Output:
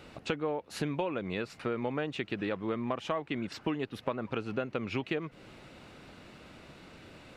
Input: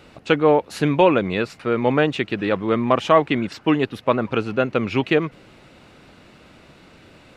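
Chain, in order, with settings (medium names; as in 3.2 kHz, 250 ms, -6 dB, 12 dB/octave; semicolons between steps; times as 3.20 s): compression 6:1, threshold -27 dBFS, peak gain reduction 17 dB; trim -3.5 dB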